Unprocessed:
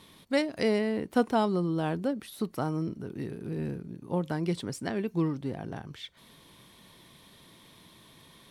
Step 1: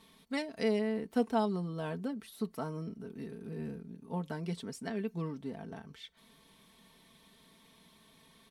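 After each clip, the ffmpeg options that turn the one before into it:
ffmpeg -i in.wav -af "aecho=1:1:4.5:0.67,volume=-8dB" out.wav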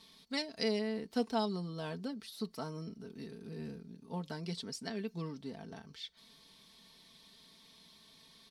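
ffmpeg -i in.wav -af "equalizer=frequency=4700:width_type=o:width=0.94:gain=13.5,volume=-3.5dB" out.wav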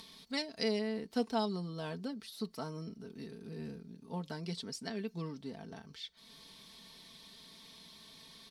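ffmpeg -i in.wav -af "acompressor=mode=upward:threshold=-48dB:ratio=2.5" out.wav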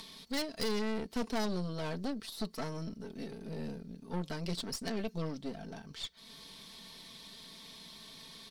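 ffmpeg -i in.wav -af "aeval=exprs='(tanh(89.1*val(0)+0.75)-tanh(0.75))/89.1':channel_layout=same,volume=8.5dB" out.wav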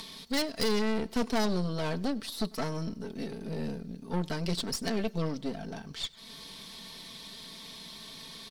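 ffmpeg -i in.wav -af "aecho=1:1:97|194|291:0.0631|0.0303|0.0145,volume=5.5dB" out.wav

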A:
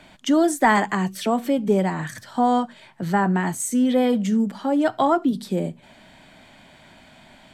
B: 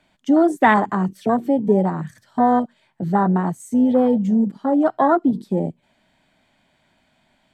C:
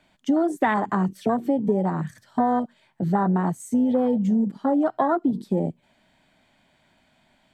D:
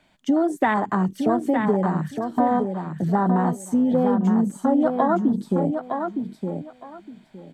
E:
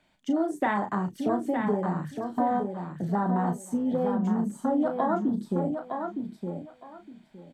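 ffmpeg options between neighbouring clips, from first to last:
ffmpeg -i in.wav -af "afwtdn=0.0794,volume=3dB" out.wav
ffmpeg -i in.wav -af "acompressor=threshold=-18dB:ratio=5" out.wav
ffmpeg -i in.wav -af "aecho=1:1:913|1826|2739:0.501|0.1|0.02,volume=1dB" out.wav
ffmpeg -i in.wav -filter_complex "[0:a]asplit=2[link_01][link_02];[link_02]adelay=34,volume=-7.5dB[link_03];[link_01][link_03]amix=inputs=2:normalize=0,volume=-6.5dB" out.wav

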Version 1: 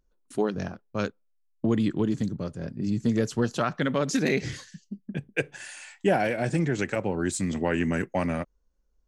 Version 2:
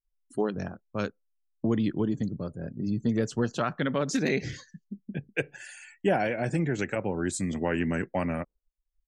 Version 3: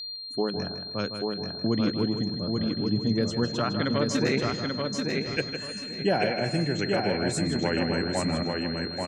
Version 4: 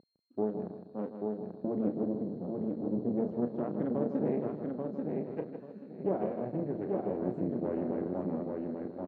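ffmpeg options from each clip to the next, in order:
ffmpeg -i in.wav -af "afftdn=noise_reduction=29:noise_floor=-48,volume=-2dB" out.wav
ffmpeg -i in.wav -filter_complex "[0:a]asplit=2[link_01][link_02];[link_02]aecho=0:1:836|1672|2508|3344:0.668|0.167|0.0418|0.0104[link_03];[link_01][link_03]amix=inputs=2:normalize=0,aeval=exprs='val(0)+0.02*sin(2*PI*4200*n/s)':channel_layout=same,asplit=2[link_04][link_05];[link_05]adelay=157,lowpass=frequency=4500:poles=1,volume=-8dB,asplit=2[link_06][link_07];[link_07]adelay=157,lowpass=frequency=4500:poles=1,volume=0.39,asplit=2[link_08][link_09];[link_09]adelay=157,lowpass=frequency=4500:poles=1,volume=0.39,asplit=2[link_10][link_11];[link_11]adelay=157,lowpass=frequency=4500:poles=1,volume=0.39[link_12];[link_06][link_08][link_10][link_12]amix=inputs=4:normalize=0[link_13];[link_04][link_13]amix=inputs=2:normalize=0" out.wav
ffmpeg -i in.wav -filter_complex "[0:a]asplit=2[link_01][link_02];[link_02]adelay=33,volume=-9dB[link_03];[link_01][link_03]amix=inputs=2:normalize=0,aeval=exprs='max(val(0),0)':channel_layout=same,asuperpass=centerf=320:order=4:qfactor=0.71" out.wav

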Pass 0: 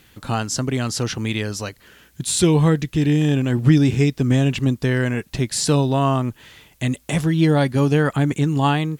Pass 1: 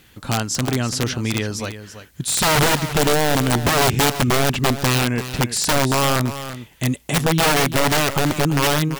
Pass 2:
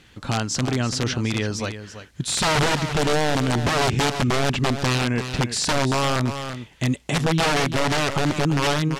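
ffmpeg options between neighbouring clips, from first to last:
ffmpeg -i in.wav -af "aeval=exprs='(mod(4.22*val(0)+1,2)-1)/4.22':channel_layout=same,aecho=1:1:337:0.251,volume=1dB" out.wav
ffmpeg -i in.wav -af "lowpass=6800,alimiter=limit=-14dB:level=0:latency=1:release=39" out.wav

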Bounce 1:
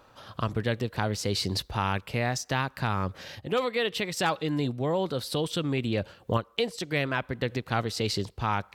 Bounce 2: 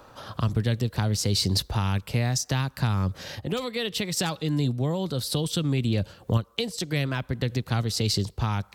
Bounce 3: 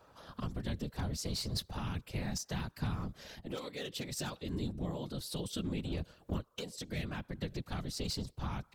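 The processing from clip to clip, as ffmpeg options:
ffmpeg -i in.wav -filter_complex "[0:a]equalizer=frequency=2600:width=0.97:gain=-4,acrossover=split=210|3000[link_01][link_02][link_03];[link_02]acompressor=threshold=-43dB:ratio=2.5[link_04];[link_01][link_04][link_03]amix=inputs=3:normalize=0,volume=7.5dB" out.wav
ffmpeg -i in.wav -af "aeval=exprs='clip(val(0),-1,0.0891)':channel_layout=same,afftfilt=real='hypot(re,im)*cos(2*PI*random(0))':imag='hypot(re,im)*sin(2*PI*random(1))':win_size=512:overlap=0.75,volume=-6dB" out.wav

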